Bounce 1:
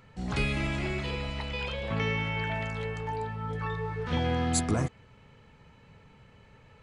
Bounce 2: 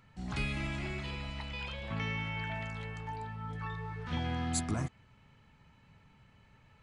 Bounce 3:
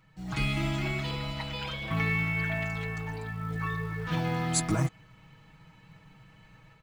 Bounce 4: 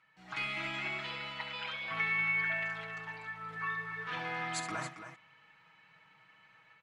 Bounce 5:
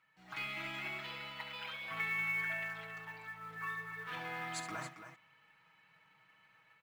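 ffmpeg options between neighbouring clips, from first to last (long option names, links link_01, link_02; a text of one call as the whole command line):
ffmpeg -i in.wav -af "equalizer=frequency=470:width_type=o:width=0.5:gain=-9.5,volume=-5.5dB" out.wav
ffmpeg -i in.wav -af "aecho=1:1:6.3:0.9,dynaudnorm=framelen=240:gausssize=3:maxgain=7.5dB,acrusher=bits=8:mode=log:mix=0:aa=0.000001,volume=-3dB" out.wav
ffmpeg -i in.wav -filter_complex "[0:a]bandpass=frequency=1800:width_type=q:width=0.97:csg=0,asplit=2[link_01][link_02];[link_02]aecho=0:1:67.06|274.1:0.316|0.316[link_03];[link_01][link_03]amix=inputs=2:normalize=0" out.wav
ffmpeg -i in.wav -af "acrusher=bits=6:mode=log:mix=0:aa=0.000001,volume=-4.5dB" out.wav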